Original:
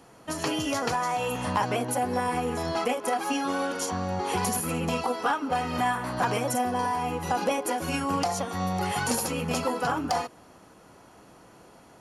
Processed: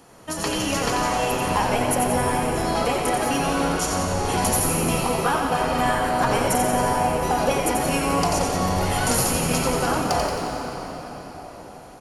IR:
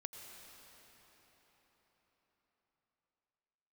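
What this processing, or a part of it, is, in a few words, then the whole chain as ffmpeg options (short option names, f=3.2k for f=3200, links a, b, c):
cathedral: -filter_complex "[0:a]highshelf=f=6k:g=5[a];[1:a]atrim=start_sample=2205[b];[a][b]afir=irnorm=-1:irlink=0,asplit=9[c][d][e][f][g][h][i][j][k];[d]adelay=89,afreqshift=-110,volume=-5dB[l];[e]adelay=178,afreqshift=-220,volume=-9.6dB[m];[f]adelay=267,afreqshift=-330,volume=-14.2dB[n];[g]adelay=356,afreqshift=-440,volume=-18.7dB[o];[h]adelay=445,afreqshift=-550,volume=-23.3dB[p];[i]adelay=534,afreqshift=-660,volume=-27.9dB[q];[j]adelay=623,afreqshift=-770,volume=-32.5dB[r];[k]adelay=712,afreqshift=-880,volume=-37.1dB[s];[c][l][m][n][o][p][q][r][s]amix=inputs=9:normalize=0,volume=7dB"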